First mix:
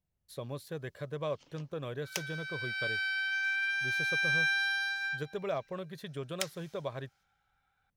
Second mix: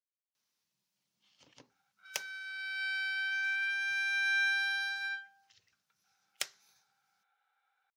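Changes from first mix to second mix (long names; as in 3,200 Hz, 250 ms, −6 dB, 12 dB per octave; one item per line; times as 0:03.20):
speech: muted
reverb: off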